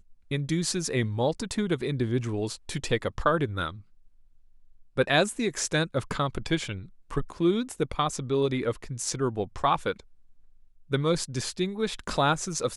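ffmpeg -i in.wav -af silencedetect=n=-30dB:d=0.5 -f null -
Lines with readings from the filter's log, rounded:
silence_start: 3.70
silence_end: 4.97 | silence_duration: 1.27
silence_start: 10.00
silence_end: 10.92 | silence_duration: 0.92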